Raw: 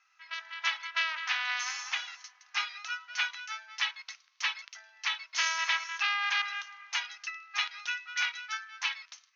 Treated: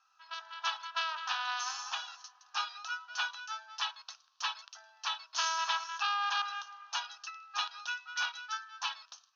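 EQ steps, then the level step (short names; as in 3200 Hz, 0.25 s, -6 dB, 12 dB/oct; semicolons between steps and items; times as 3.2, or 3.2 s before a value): air absorption 90 m; fixed phaser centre 870 Hz, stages 4; +5.0 dB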